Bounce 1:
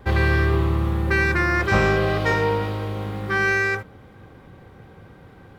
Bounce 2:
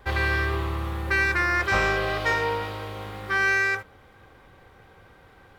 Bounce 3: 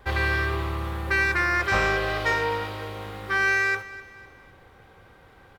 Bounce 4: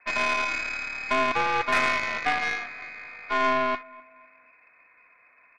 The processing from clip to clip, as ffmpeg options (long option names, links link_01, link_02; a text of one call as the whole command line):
ffmpeg -i in.wav -af "equalizer=frequency=170:width=0.46:gain=-13" out.wav
ffmpeg -i in.wav -af "aecho=1:1:253|506|759:0.133|0.056|0.0235" out.wav
ffmpeg -i in.wav -af "lowpass=frequency=2200:width_type=q:width=0.5098,lowpass=frequency=2200:width_type=q:width=0.6013,lowpass=frequency=2200:width_type=q:width=0.9,lowpass=frequency=2200:width_type=q:width=2.563,afreqshift=-2600,aeval=exprs='0.316*(cos(1*acos(clip(val(0)/0.316,-1,1)))-cos(1*PI/2))+0.0398*(cos(4*acos(clip(val(0)/0.316,-1,1)))-cos(4*PI/2))+0.0224*(cos(7*acos(clip(val(0)/0.316,-1,1)))-cos(7*PI/2))':channel_layout=same" out.wav